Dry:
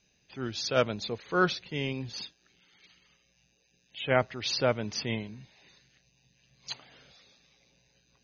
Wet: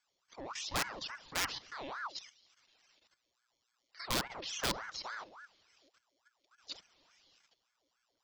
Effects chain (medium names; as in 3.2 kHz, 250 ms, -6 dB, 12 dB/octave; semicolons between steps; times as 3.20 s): dynamic bell 670 Hz, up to +5 dB, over -40 dBFS, Q 2.5; on a send: thinning echo 70 ms, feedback 60%, high-pass 280 Hz, level -15 dB; on the sum: integer overflow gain 16.5 dB; level held to a coarse grid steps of 13 dB; graphic EQ 125/250/500/2000/4000 Hz +12/-12/+4/-6/+8 dB; ring modulator with a swept carrier 1 kHz, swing 60%, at 3.5 Hz; trim -5 dB